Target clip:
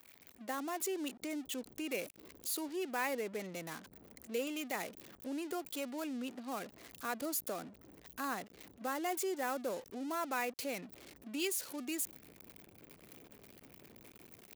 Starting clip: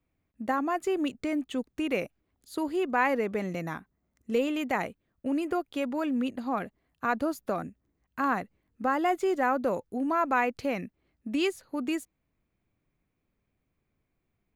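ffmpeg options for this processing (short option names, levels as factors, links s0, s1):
-filter_complex "[0:a]aeval=exprs='val(0)+0.5*0.0168*sgn(val(0))':c=same,anlmdn=0.251,acrossover=split=560|1100[s0][s1][s2];[s0]dynaudnorm=f=150:g=5:m=5.31[s3];[s3][s1][s2]amix=inputs=3:normalize=0,aderivative,volume=1.12"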